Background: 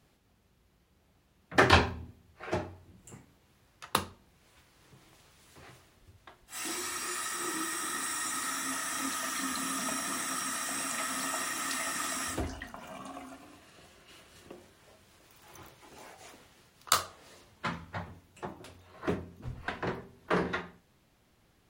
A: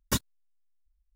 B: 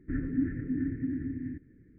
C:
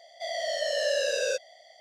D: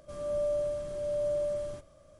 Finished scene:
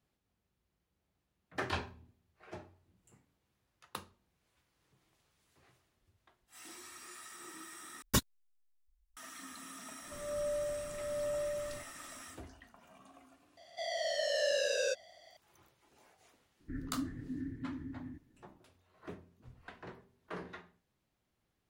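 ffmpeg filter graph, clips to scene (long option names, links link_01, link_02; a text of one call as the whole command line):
ffmpeg -i bed.wav -i cue0.wav -i cue1.wav -i cue2.wav -i cue3.wav -filter_complex "[0:a]volume=-15dB,asplit=2[link_01][link_02];[link_01]atrim=end=8.024[link_03];[1:a]atrim=end=1.15,asetpts=PTS-STARTPTS,volume=-2dB[link_04];[link_02]atrim=start=9.166[link_05];[4:a]atrim=end=2.19,asetpts=PTS-STARTPTS,volume=-6dB,afade=type=in:duration=0.004:curve=hsin,afade=type=out:start_time=2.186:duration=0.004:curve=hsin,adelay=10030[link_06];[3:a]atrim=end=1.8,asetpts=PTS-STARTPTS,volume=-5dB,afade=type=in:duration=0.004:curve=hsin,afade=type=out:start_time=1.796:duration=0.004:curve=hsin,adelay=13570[link_07];[2:a]atrim=end=1.98,asetpts=PTS-STARTPTS,volume=-9.5dB,afade=type=in:duration=0.004:curve=hsin,afade=type=out:start_time=1.976:duration=0.004:curve=hsin,adelay=16600[link_08];[link_03][link_04]acrossfade=duration=0.004:curve1=hsin:curve2=hsin[link_09];[link_09][link_05]acrossfade=duration=0.004:curve1=hsin:curve2=hsin[link_10];[link_10][link_06][link_07][link_08]amix=inputs=4:normalize=0" out.wav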